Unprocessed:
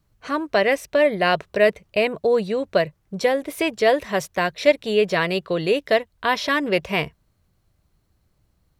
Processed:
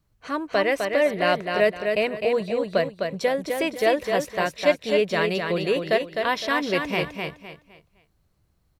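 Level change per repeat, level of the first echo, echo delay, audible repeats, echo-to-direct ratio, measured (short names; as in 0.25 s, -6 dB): -10.5 dB, -5.0 dB, 0.256 s, 3, -4.5 dB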